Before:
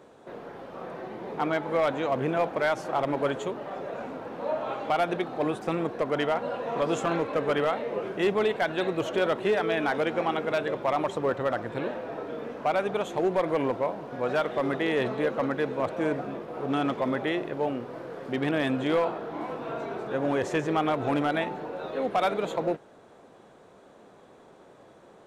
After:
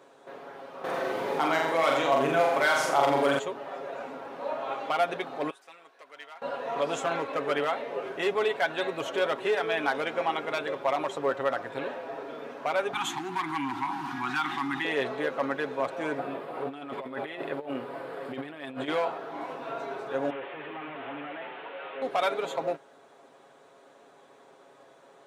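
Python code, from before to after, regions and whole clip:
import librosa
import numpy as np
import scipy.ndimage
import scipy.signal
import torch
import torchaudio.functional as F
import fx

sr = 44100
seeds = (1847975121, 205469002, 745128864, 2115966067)

y = fx.chain(x, sr, fx.high_shelf(hz=5400.0, db=9.0),
    fx.room_flutter(wall_m=7.3, rt60_s=0.62),
    fx.env_flatten(amount_pct=50), at=(0.84, 3.39))
y = fx.chain(y, sr, fx.lowpass(hz=2100.0, slope=6),
    fx.differentiator(), at=(5.5, 6.42))
y = fx.chain(y, sr, fx.cheby1_bandstop(low_hz=360.0, high_hz=760.0, order=5),
    fx.env_flatten(amount_pct=70), at=(12.93, 14.85))
y = fx.chain(y, sr, fx.peak_eq(hz=6000.0, db=-12.0, octaves=0.44),
    fx.over_compress(threshold_db=-31.0, ratio=-0.5), at=(16.18, 18.88))
y = fx.chain(y, sr, fx.delta_mod(bps=16000, step_db=-44.5),
    fx.highpass(hz=100.0, slope=12),
    fx.tilt_eq(slope=4.0), at=(20.3, 22.02))
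y = fx.highpass(y, sr, hz=570.0, slope=6)
y = y + 0.52 * np.pad(y, (int(7.3 * sr / 1000.0), 0))[:len(y)]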